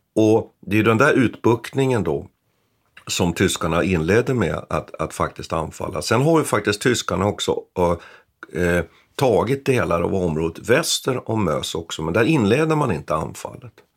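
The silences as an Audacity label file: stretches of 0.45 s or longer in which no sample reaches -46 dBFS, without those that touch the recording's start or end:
2.280000	2.970000	silence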